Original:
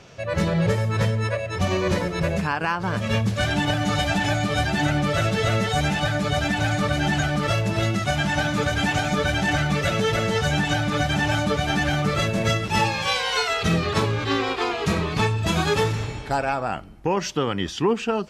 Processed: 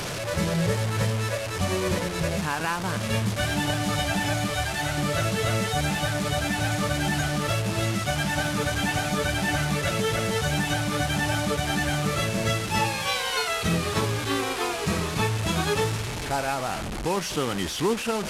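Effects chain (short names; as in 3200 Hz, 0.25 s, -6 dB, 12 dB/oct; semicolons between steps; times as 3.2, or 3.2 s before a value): delta modulation 64 kbps, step -22 dBFS; 4.5–4.98 bell 230 Hz -14.5 dB 0.88 oct; gain -3.5 dB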